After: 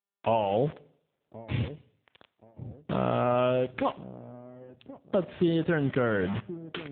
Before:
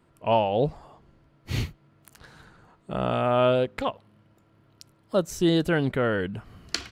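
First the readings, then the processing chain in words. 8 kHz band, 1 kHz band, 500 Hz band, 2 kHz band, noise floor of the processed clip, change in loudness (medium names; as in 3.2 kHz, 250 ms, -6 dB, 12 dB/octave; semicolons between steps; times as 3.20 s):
under -35 dB, -3.0 dB, -3.0 dB, -3.0 dB, -81 dBFS, -3.0 dB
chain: word length cut 6-bit, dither none; compression 4:1, threshold -26 dBFS, peak gain reduction 8.5 dB; feedback echo behind a low-pass 1076 ms, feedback 37%, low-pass 470 Hz, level -12 dB; waveshaping leveller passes 1; Schroeder reverb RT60 0.67 s, combs from 25 ms, DRR 18 dB; AMR-NB 7.4 kbps 8 kHz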